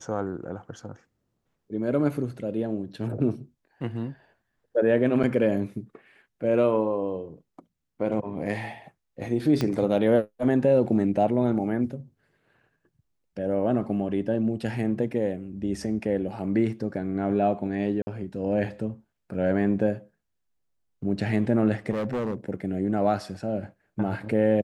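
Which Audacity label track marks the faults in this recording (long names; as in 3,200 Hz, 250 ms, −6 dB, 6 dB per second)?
5.230000	5.240000	drop-out 6 ms
9.610000	9.610000	click −13 dBFS
18.020000	18.070000	drop-out 50 ms
21.900000	22.360000	clipping −24.5 dBFS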